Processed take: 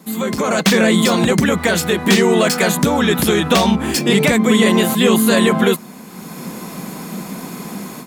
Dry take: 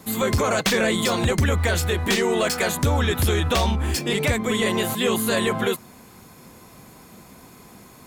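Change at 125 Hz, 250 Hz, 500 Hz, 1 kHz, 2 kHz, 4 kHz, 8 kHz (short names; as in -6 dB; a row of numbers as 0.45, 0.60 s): +2.5, +11.5, +7.0, +6.5, +6.5, +6.5, +6.0 dB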